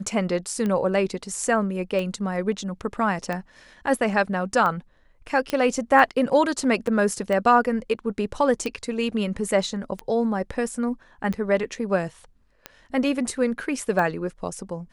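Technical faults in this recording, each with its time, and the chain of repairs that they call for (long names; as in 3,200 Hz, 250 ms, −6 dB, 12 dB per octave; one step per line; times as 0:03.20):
scratch tick 45 rpm −16 dBFS
0:05.50: click −12 dBFS
0:06.87: drop-out 4 ms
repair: click removal
repair the gap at 0:06.87, 4 ms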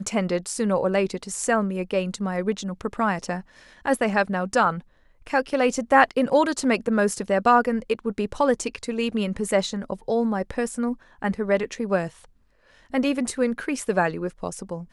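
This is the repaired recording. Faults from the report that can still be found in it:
none of them is left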